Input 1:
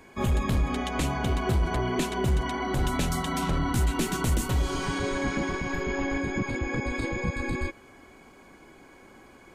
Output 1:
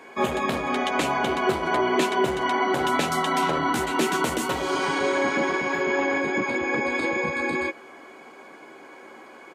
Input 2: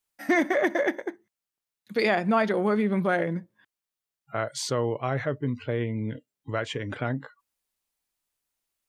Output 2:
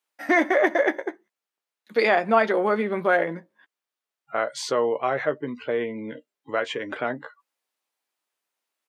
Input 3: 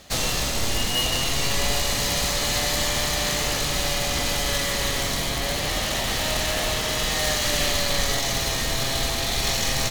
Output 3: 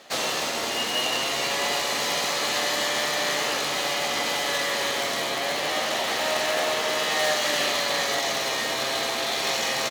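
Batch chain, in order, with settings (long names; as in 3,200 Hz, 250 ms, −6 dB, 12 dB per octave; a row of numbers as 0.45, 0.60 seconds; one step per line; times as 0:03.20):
high-pass filter 370 Hz 12 dB per octave
high-shelf EQ 4,500 Hz −10.5 dB
double-tracking delay 13 ms −10 dB
loudness normalisation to −24 LKFS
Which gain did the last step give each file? +9.0, +5.5, +2.5 decibels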